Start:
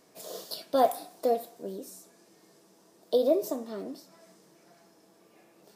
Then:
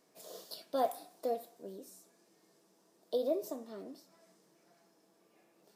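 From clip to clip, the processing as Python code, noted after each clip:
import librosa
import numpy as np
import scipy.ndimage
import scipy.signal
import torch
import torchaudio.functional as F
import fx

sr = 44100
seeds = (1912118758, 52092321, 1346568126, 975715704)

y = fx.peak_eq(x, sr, hz=73.0, db=-12.0, octaves=0.85)
y = F.gain(torch.from_numpy(y), -8.5).numpy()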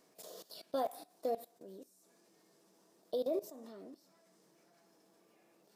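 y = fx.level_steps(x, sr, step_db=18)
y = F.gain(torch.from_numpy(y), 3.0).numpy()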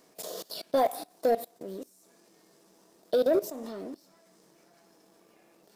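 y = fx.leveller(x, sr, passes=1)
y = F.gain(torch.from_numpy(y), 8.5).numpy()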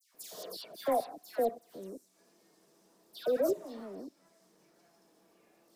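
y = fx.dispersion(x, sr, late='lows', ms=146.0, hz=1900.0)
y = F.gain(torch.from_numpy(y), -5.0).numpy()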